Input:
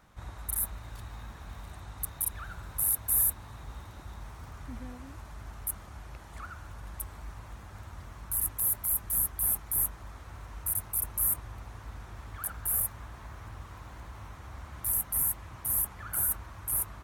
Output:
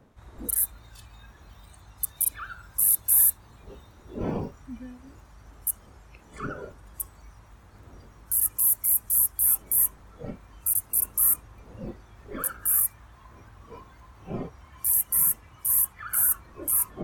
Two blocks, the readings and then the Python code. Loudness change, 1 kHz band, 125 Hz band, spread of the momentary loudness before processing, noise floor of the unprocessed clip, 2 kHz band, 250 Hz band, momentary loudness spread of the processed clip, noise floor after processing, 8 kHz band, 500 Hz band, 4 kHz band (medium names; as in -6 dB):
+6.5 dB, +1.5 dB, -1.0 dB, 20 LU, -48 dBFS, +3.0 dB, +10.0 dB, 22 LU, -53 dBFS, +6.5 dB, +10.5 dB, no reading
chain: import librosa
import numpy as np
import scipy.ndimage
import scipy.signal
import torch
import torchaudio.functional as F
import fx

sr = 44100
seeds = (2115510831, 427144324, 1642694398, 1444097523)

y = fx.dmg_wind(x, sr, seeds[0], corner_hz=390.0, level_db=-47.0)
y = fx.noise_reduce_blind(y, sr, reduce_db=13)
y = F.gain(torch.from_numpy(y), 6.5).numpy()